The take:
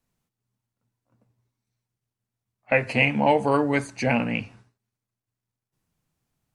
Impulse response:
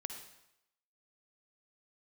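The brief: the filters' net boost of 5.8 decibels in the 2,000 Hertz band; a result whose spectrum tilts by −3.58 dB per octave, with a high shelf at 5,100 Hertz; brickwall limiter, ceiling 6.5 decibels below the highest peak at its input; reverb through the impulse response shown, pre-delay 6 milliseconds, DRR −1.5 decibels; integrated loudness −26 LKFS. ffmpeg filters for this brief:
-filter_complex "[0:a]equalizer=frequency=2000:width_type=o:gain=6,highshelf=frequency=5100:gain=5.5,alimiter=limit=-7dB:level=0:latency=1,asplit=2[link_01][link_02];[1:a]atrim=start_sample=2205,adelay=6[link_03];[link_02][link_03]afir=irnorm=-1:irlink=0,volume=3dB[link_04];[link_01][link_04]amix=inputs=2:normalize=0,volume=-8dB"

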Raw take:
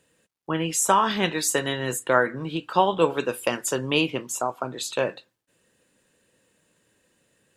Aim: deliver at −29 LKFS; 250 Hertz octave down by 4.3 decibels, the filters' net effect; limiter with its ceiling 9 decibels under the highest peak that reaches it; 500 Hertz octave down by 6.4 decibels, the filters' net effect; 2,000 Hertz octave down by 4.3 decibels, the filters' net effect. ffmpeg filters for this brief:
ffmpeg -i in.wav -af "equalizer=frequency=250:width_type=o:gain=-3.5,equalizer=frequency=500:width_type=o:gain=-6.5,equalizer=frequency=2000:width_type=o:gain=-5.5,volume=1.5dB,alimiter=limit=-16.5dB:level=0:latency=1" out.wav

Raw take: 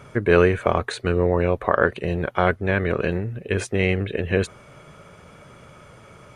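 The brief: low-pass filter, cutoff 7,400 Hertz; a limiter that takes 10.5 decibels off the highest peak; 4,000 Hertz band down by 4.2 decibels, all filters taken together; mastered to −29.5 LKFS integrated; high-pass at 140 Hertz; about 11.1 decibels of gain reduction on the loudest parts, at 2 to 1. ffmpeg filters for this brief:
ffmpeg -i in.wav -af "highpass=140,lowpass=7400,equalizer=frequency=4000:width_type=o:gain=-5.5,acompressor=threshold=-32dB:ratio=2,volume=5dB,alimiter=limit=-16dB:level=0:latency=1" out.wav

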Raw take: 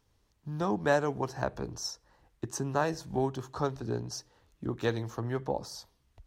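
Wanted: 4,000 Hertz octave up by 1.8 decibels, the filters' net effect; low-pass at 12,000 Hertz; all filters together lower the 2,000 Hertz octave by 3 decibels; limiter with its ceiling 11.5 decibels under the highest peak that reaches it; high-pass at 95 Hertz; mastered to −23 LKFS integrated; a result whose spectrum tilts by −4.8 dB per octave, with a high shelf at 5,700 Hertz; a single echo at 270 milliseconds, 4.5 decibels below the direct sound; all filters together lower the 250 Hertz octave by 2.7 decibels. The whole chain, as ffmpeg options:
ffmpeg -i in.wav -af "highpass=95,lowpass=12000,equalizer=frequency=250:width_type=o:gain=-3.5,equalizer=frequency=2000:width_type=o:gain=-4.5,equalizer=frequency=4000:width_type=o:gain=6,highshelf=frequency=5700:gain=-4.5,alimiter=level_in=1.5dB:limit=-24dB:level=0:latency=1,volume=-1.5dB,aecho=1:1:270:0.596,volume=14.5dB" out.wav

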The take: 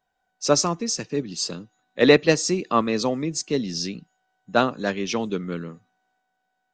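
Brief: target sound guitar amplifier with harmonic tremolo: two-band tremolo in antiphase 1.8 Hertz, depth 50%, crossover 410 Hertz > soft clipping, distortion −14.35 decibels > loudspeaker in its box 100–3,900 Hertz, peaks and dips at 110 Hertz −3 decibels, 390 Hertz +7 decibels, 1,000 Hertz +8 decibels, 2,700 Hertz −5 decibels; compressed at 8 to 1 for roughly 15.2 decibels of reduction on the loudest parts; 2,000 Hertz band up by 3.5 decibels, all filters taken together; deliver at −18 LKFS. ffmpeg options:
ffmpeg -i in.wav -filter_complex "[0:a]equalizer=frequency=2000:width_type=o:gain=5,acompressor=threshold=-24dB:ratio=8,acrossover=split=410[link_01][link_02];[link_01]aeval=exprs='val(0)*(1-0.5/2+0.5/2*cos(2*PI*1.8*n/s))':channel_layout=same[link_03];[link_02]aeval=exprs='val(0)*(1-0.5/2-0.5/2*cos(2*PI*1.8*n/s))':channel_layout=same[link_04];[link_03][link_04]amix=inputs=2:normalize=0,asoftclip=threshold=-25dB,highpass=100,equalizer=frequency=110:width_type=q:width=4:gain=-3,equalizer=frequency=390:width_type=q:width=4:gain=7,equalizer=frequency=1000:width_type=q:width=4:gain=8,equalizer=frequency=2700:width_type=q:width=4:gain=-5,lowpass=frequency=3900:width=0.5412,lowpass=frequency=3900:width=1.3066,volume=16dB" out.wav

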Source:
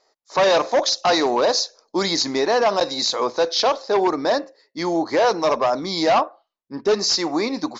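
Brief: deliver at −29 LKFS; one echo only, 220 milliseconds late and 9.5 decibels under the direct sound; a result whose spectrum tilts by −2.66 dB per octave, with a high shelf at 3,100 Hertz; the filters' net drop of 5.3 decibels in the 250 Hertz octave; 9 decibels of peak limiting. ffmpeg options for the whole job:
ffmpeg -i in.wav -af "equalizer=frequency=250:width_type=o:gain=-8,highshelf=frequency=3100:gain=-4.5,alimiter=limit=-19.5dB:level=0:latency=1,aecho=1:1:220:0.335,volume=-1.5dB" out.wav

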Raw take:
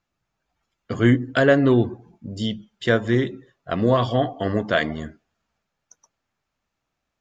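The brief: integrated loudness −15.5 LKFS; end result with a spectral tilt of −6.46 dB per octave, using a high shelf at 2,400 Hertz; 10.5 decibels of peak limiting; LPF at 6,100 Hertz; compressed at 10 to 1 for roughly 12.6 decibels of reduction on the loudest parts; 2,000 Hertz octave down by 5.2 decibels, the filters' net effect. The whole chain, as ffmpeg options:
ffmpeg -i in.wav -af "lowpass=6100,equalizer=frequency=2000:width_type=o:gain=-4,highshelf=frequency=2400:gain=-7,acompressor=threshold=-25dB:ratio=10,volume=20dB,alimiter=limit=-4dB:level=0:latency=1" out.wav

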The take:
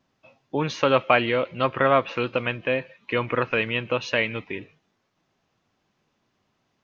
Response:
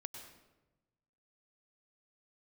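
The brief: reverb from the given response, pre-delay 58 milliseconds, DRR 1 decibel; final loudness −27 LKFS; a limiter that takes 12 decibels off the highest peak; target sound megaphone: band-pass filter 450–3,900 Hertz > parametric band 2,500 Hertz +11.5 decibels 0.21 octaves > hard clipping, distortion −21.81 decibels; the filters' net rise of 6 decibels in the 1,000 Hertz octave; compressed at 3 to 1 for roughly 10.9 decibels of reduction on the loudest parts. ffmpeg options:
-filter_complex "[0:a]equalizer=frequency=1000:width_type=o:gain=8,acompressor=threshold=-25dB:ratio=3,alimiter=limit=-20dB:level=0:latency=1,asplit=2[link_01][link_02];[1:a]atrim=start_sample=2205,adelay=58[link_03];[link_02][link_03]afir=irnorm=-1:irlink=0,volume=2.5dB[link_04];[link_01][link_04]amix=inputs=2:normalize=0,highpass=450,lowpass=3900,equalizer=frequency=2500:width_type=o:width=0.21:gain=11.5,asoftclip=type=hard:threshold=-21dB,volume=2dB"

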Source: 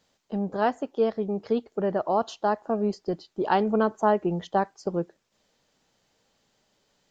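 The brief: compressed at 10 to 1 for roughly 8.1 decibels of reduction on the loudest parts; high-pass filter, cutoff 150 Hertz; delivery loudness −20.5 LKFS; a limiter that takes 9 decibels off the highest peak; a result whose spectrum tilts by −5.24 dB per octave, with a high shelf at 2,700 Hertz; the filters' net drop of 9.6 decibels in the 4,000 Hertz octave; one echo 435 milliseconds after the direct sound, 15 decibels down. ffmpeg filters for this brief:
ffmpeg -i in.wav -af "highpass=150,highshelf=frequency=2700:gain=-5.5,equalizer=frequency=4000:width_type=o:gain=-9,acompressor=threshold=-26dB:ratio=10,alimiter=level_in=0.5dB:limit=-24dB:level=0:latency=1,volume=-0.5dB,aecho=1:1:435:0.178,volume=15.5dB" out.wav

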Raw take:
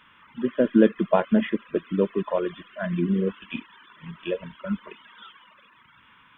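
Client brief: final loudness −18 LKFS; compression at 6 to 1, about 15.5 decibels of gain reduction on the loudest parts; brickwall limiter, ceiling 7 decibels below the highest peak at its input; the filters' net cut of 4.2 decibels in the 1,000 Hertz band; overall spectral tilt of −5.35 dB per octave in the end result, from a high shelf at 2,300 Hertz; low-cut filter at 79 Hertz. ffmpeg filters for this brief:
ffmpeg -i in.wav -af "highpass=79,equalizer=frequency=1000:width_type=o:gain=-6.5,highshelf=frequency=2300:gain=4,acompressor=threshold=-29dB:ratio=6,volume=19.5dB,alimiter=limit=-5.5dB:level=0:latency=1" out.wav

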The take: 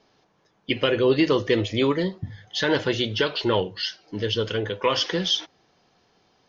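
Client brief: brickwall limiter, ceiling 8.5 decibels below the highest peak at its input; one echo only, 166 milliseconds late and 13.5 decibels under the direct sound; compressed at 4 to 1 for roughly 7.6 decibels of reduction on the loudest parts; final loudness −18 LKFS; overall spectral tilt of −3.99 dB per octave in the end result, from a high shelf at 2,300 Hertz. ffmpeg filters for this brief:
ffmpeg -i in.wav -af "highshelf=frequency=2300:gain=-6.5,acompressor=threshold=-25dB:ratio=4,alimiter=limit=-21.5dB:level=0:latency=1,aecho=1:1:166:0.211,volume=14dB" out.wav

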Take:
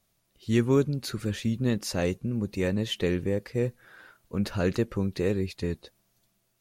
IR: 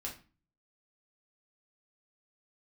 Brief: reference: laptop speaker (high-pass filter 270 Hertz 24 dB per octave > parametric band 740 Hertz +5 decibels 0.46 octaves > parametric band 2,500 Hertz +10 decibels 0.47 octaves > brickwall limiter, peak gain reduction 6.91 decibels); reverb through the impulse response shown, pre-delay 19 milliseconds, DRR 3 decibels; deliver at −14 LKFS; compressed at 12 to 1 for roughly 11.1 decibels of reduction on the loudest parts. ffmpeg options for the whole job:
-filter_complex "[0:a]acompressor=threshold=-28dB:ratio=12,asplit=2[link_01][link_02];[1:a]atrim=start_sample=2205,adelay=19[link_03];[link_02][link_03]afir=irnorm=-1:irlink=0,volume=-2.5dB[link_04];[link_01][link_04]amix=inputs=2:normalize=0,highpass=frequency=270:width=0.5412,highpass=frequency=270:width=1.3066,equalizer=frequency=740:width_type=o:width=0.46:gain=5,equalizer=frequency=2500:width_type=o:width=0.47:gain=10,volume=23dB,alimiter=limit=-3dB:level=0:latency=1"

